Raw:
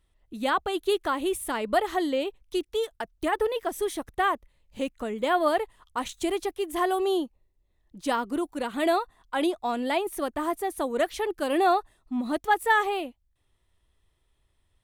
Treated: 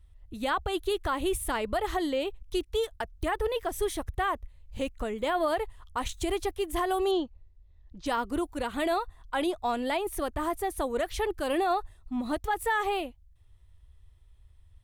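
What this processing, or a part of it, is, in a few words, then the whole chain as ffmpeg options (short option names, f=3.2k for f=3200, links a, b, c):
car stereo with a boomy subwoofer: -filter_complex "[0:a]lowshelf=f=130:t=q:w=1.5:g=13.5,alimiter=limit=-19.5dB:level=0:latency=1:release=63,asettb=1/sr,asplit=3[a][b][c];[a]atrim=end=7.114[d];[b]atrim=start=7.11:end=8.06,asetpts=PTS-STARTPTS,afade=t=in:d=0.004:c=qsin,afade=t=out:st=0.946:d=0.004:c=qsin,lowpass=f=5.8k:w=0.5412,lowpass=f=5.8k:w=1.3066[e];[c]atrim=start=8.056[f];[d][e]acrossfade=d=0.004:c1=hsin:c2=qsin[g];[g][f]acrossfade=d=0.004:c1=qsin:c2=hsin"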